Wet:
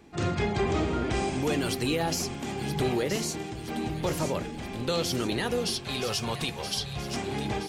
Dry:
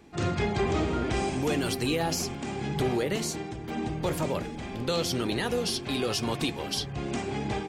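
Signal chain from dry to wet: 5.73–7.17 bell 300 Hz -11.5 dB 0.49 oct; on a send: thin delay 0.973 s, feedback 54%, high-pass 2700 Hz, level -8 dB

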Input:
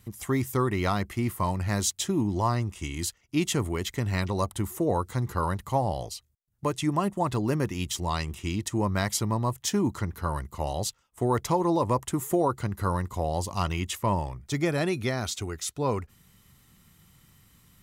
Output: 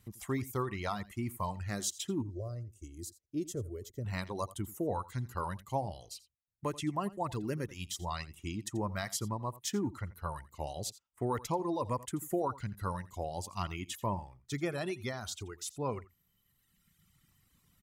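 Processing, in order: 2.22–4.05 EQ curve 110 Hz 0 dB, 180 Hz -8 dB, 350 Hz 0 dB, 600 Hz 0 dB, 880 Hz -30 dB, 1300 Hz -17 dB, 2500 Hz -21 dB, 6100 Hz -5 dB, 9800 Hz -6 dB, 15000 Hz -3 dB; reverb removal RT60 1.7 s; on a send: echo 85 ms -18.5 dB; on the sum: gain -7.5 dB

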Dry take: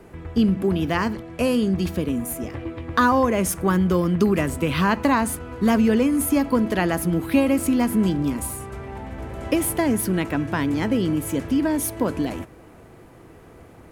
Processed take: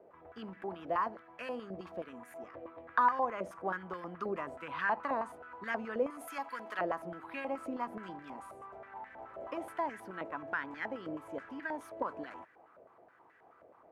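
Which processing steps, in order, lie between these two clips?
6.1–6.79 tilt +3.5 dB/oct; stepped band-pass 9.4 Hz 590–1700 Hz; gain -2.5 dB

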